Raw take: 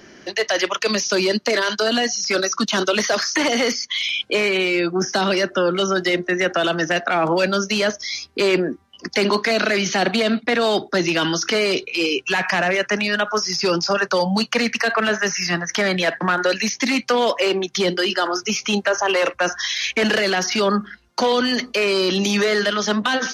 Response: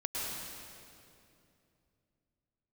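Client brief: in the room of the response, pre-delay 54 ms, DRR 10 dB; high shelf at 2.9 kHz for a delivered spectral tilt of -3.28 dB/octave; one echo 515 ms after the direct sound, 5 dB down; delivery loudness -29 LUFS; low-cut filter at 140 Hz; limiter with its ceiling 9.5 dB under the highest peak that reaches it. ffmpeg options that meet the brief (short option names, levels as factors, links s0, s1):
-filter_complex "[0:a]highpass=140,highshelf=f=2900:g=-4.5,alimiter=limit=0.158:level=0:latency=1,aecho=1:1:515:0.562,asplit=2[s0][s1];[1:a]atrim=start_sample=2205,adelay=54[s2];[s1][s2]afir=irnorm=-1:irlink=0,volume=0.188[s3];[s0][s3]amix=inputs=2:normalize=0,volume=0.501"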